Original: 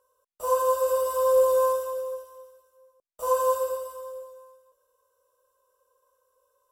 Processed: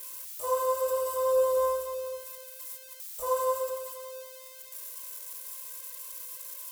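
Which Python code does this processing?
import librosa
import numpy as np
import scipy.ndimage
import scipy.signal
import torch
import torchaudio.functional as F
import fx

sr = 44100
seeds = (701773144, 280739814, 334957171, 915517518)

y = x + 0.5 * 10.0 ** (-29.0 / 20.0) * np.diff(np.sign(x), prepend=np.sign(x[:1]))
y = fx.low_shelf(y, sr, hz=130.0, db=10.0, at=(1.57, 3.24))
y = y * 10.0 ** (-4.5 / 20.0)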